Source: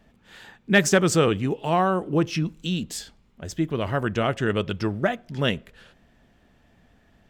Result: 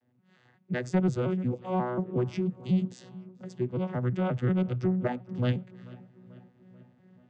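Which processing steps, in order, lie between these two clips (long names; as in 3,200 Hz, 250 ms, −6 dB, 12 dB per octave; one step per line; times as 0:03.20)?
vocoder with an arpeggio as carrier bare fifth, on B2, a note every 179 ms
speech leveller within 5 dB 2 s
feedback echo with a low-pass in the loop 438 ms, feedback 57%, low-pass 3,700 Hz, level −21.5 dB
soft clipping −13 dBFS, distortion −20 dB
level −3 dB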